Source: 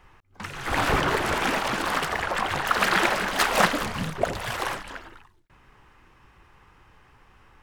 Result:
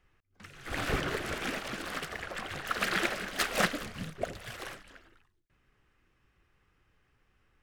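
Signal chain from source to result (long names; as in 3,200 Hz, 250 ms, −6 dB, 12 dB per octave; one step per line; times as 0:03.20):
parametric band 930 Hz −11 dB 0.59 octaves
expander for the loud parts 1.5 to 1, over −37 dBFS
level −4.5 dB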